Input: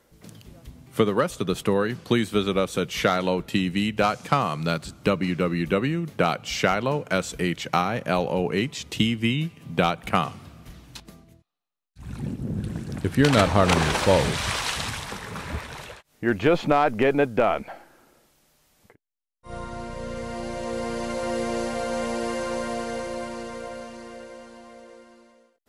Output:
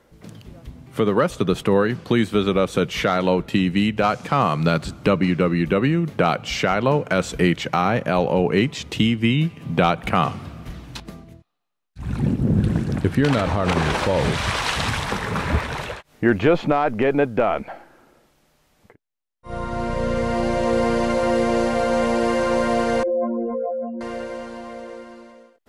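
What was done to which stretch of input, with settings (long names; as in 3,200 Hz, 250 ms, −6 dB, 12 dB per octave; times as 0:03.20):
0:23.03–0:24.01: expanding power law on the bin magnitudes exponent 3.4
whole clip: brickwall limiter −12.5 dBFS; speech leveller within 4 dB 0.5 s; high-shelf EQ 4,400 Hz −10 dB; level +7 dB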